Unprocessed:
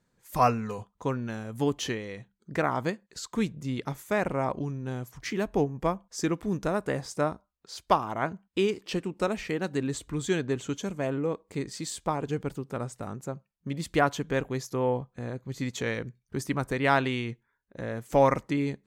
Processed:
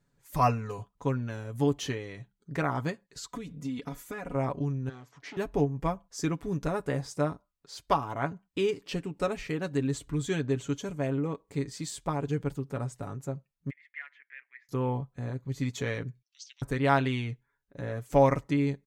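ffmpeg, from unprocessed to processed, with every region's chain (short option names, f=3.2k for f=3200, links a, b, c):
-filter_complex "[0:a]asettb=1/sr,asplit=3[a][b][c];[a]atrim=end=3.284[d];[b]atrim=start=3.28:end=4.35,asetpts=PTS-STARTPTS,afade=t=in:d=0.004:c=qsin,afade=t=out:st=1.066:d=0.004:c=qsin,aecho=1:1:4.1:0.68,atrim=end_sample=47187,acompressor=threshold=-30dB:ratio=16:attack=3.2:release=140:knee=1:detection=peak[e];[c]atrim=start=4.346[f];[d][e]acrossfade=d=0.004:c1=hsin:c2=qsin[g];[g][f]acrossfade=d=0.004:c1=qsin:c2=hsin,asettb=1/sr,asplit=3[h][i][j];[h]atrim=end=4.894[k];[i]atrim=start=4.89:end=5.37,asetpts=PTS-STARTPTS,afade=t=in:d=0.004:c=qsin,afade=t=out:st=0.476:d=0.004:c=qsin,asoftclip=type=hard:threshold=-36.5dB,highpass=270,lowpass=4.7k[l];[j]atrim=start=5.366[m];[k][l]acrossfade=d=0.004:c1=hsin:c2=qsin[n];[n][m]acrossfade=d=0.004:c1=qsin:c2=hsin,asettb=1/sr,asplit=3[o][p][q];[o]atrim=end=13.704[r];[p]atrim=start=13.7:end=14.69,asetpts=PTS-STARTPTS,afade=t=in:d=0.004:c=qsin,afade=t=out:st=0.986:d=0.004:c=qsin,asoftclip=type=hard:threshold=-18.5dB,asuperpass=centerf=2000:order=4:qfactor=3.8[s];[q]atrim=start=14.686[t];[r][s]acrossfade=d=0.004:c1=hsin:c2=qsin[u];[u][t]acrossfade=d=0.004:c1=qsin:c2=hsin,asettb=1/sr,asplit=3[v][w][x];[v]atrim=end=16.224[y];[w]atrim=start=16.22:end=16.62,asetpts=PTS-STARTPTS,afade=t=in:d=0.004:c=qsin,afade=t=out:st=0.396:d=0.004:c=qsin,asuperpass=centerf=4600:order=8:qfactor=1.2,afreqshift=-320[z];[x]atrim=start=16.616[aa];[y][z]acrossfade=d=0.004:c1=hsin:c2=qsin[ab];[ab][aa]acrossfade=d=0.004:c1=qsin:c2=hsin,lowshelf=f=130:g=7.5,aecho=1:1:7.1:0.55,volume=-4dB"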